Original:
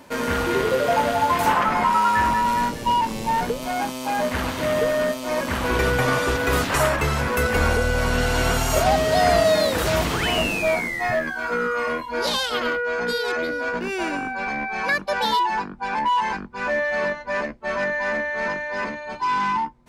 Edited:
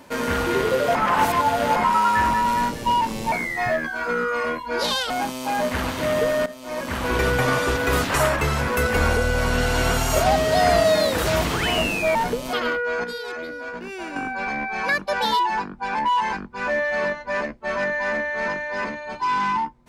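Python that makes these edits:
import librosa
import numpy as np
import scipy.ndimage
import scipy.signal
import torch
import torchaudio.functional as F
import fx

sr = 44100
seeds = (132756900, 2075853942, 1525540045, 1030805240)

y = fx.edit(x, sr, fx.reverse_span(start_s=0.95, length_s=0.81),
    fx.swap(start_s=3.32, length_s=0.38, other_s=10.75, other_length_s=1.78),
    fx.fade_in_from(start_s=5.06, length_s=0.93, curve='qsin', floor_db=-15.5),
    fx.clip_gain(start_s=13.04, length_s=1.12, db=-7.0), tone=tone)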